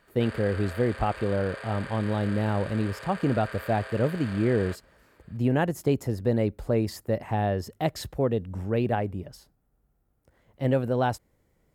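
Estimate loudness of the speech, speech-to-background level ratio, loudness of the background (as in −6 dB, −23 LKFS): −27.5 LKFS, 13.0 dB, −40.5 LKFS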